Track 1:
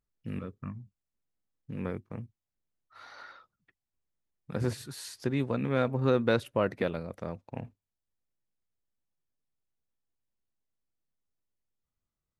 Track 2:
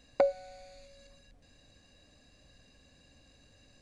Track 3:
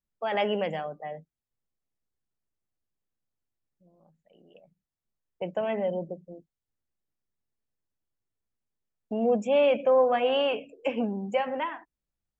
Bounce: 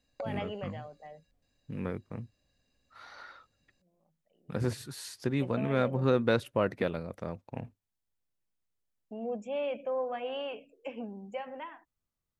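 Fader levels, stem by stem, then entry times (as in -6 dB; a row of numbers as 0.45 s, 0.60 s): -0.5 dB, -14.0 dB, -11.5 dB; 0.00 s, 0.00 s, 0.00 s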